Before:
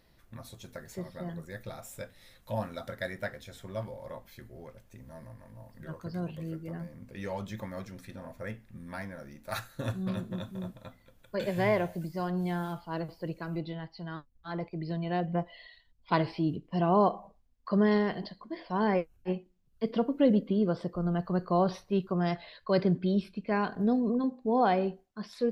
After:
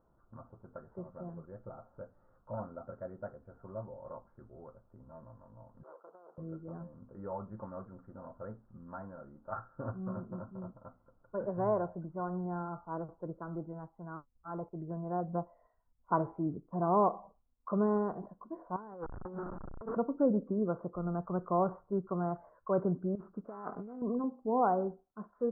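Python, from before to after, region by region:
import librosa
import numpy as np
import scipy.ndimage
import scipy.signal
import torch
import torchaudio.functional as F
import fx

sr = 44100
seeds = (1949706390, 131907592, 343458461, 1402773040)

y = fx.chain(x, sr, fx.dynamic_eq(hz=1300.0, q=1.0, threshold_db=-50.0, ratio=4.0, max_db=-6),
    fx.clip_hard(threshold_db=-27.5), at=(0.8, 4.05))
y = fx.chain(y, sr, fx.median_filter(points=41),
    fx.highpass(hz=480.0, slope=24),
    fx.over_compress(threshold_db=-51.0, ratio=-1.0), at=(5.83, 6.38))
y = fx.chain(y, sr, fx.zero_step(step_db=-36.5),
    fx.peak_eq(hz=1700.0, db=7.0, octaves=0.62),
    fx.over_compress(threshold_db=-37.0, ratio=-1.0), at=(18.76, 19.97))
y = fx.chain(y, sr, fx.sample_sort(block=16),
    fx.low_shelf(hz=190.0, db=-10.5),
    fx.over_compress(threshold_db=-37.0, ratio=-1.0), at=(23.15, 24.02))
y = scipy.signal.sosfilt(scipy.signal.cheby1(6, 1.0, 1400.0, 'lowpass', fs=sr, output='sos'), y)
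y = fx.low_shelf(y, sr, hz=480.0, db=-6.5)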